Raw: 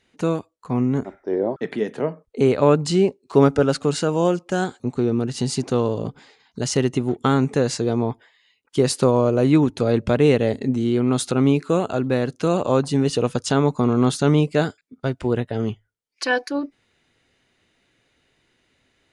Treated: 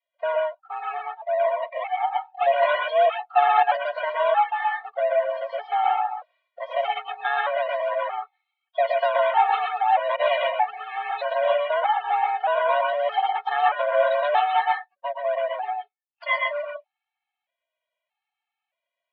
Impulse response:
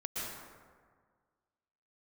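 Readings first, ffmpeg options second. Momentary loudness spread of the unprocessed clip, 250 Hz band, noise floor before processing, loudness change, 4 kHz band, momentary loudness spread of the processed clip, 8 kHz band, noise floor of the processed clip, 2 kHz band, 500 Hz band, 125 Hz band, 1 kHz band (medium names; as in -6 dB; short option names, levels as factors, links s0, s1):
10 LU, under -40 dB, -67 dBFS, -2.5 dB, -3.5 dB, 10 LU, under -40 dB, under -85 dBFS, +4.0 dB, -3.0 dB, under -40 dB, +8.5 dB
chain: -filter_complex "[0:a]asplit=2[s0][s1];[s1]acrusher=samples=31:mix=1:aa=0.000001:lfo=1:lforange=18.6:lforate=3.5,volume=0.562[s2];[s0][s2]amix=inputs=2:normalize=0,highpass=f=330:t=q:w=0.5412,highpass=f=330:t=q:w=1.307,lowpass=f=3300:t=q:w=0.5176,lowpass=f=3300:t=q:w=0.7071,lowpass=f=3300:t=q:w=1.932,afreqshift=300[s3];[1:a]atrim=start_sample=2205,atrim=end_sample=6174[s4];[s3][s4]afir=irnorm=-1:irlink=0,afftdn=nr=18:nf=-37,afftfilt=real='re*gt(sin(2*PI*0.8*pts/sr)*(1-2*mod(floor(b*sr/1024/230),2)),0)':imag='im*gt(sin(2*PI*0.8*pts/sr)*(1-2*mod(floor(b*sr/1024/230),2)),0)':win_size=1024:overlap=0.75,volume=1.41"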